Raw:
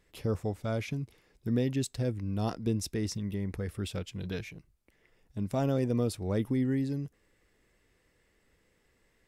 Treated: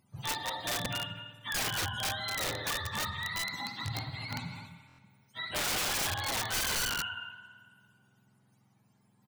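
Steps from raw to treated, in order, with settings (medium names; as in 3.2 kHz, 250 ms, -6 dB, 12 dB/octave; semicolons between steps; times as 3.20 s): spectrum inverted on a logarithmic axis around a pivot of 630 Hz; on a send: multi-tap echo 62/118/144/177/260 ms -8.5/-13.5/-19.5/-14/-10.5 dB; on the sum: spring tank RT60 1.8 s, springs 54 ms, chirp 65 ms, DRR 9.5 dB; integer overflow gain 26.5 dB; buffer glitch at 4.87 s, samples 1024, times 4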